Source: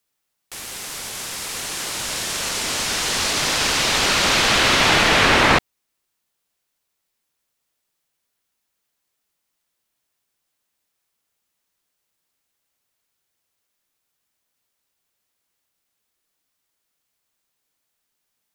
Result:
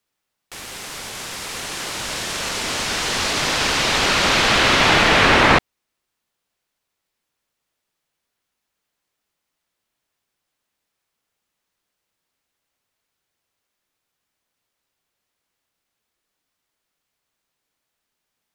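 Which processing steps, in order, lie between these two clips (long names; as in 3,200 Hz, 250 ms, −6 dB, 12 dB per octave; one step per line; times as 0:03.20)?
high-shelf EQ 5,900 Hz −8.5 dB
level +2 dB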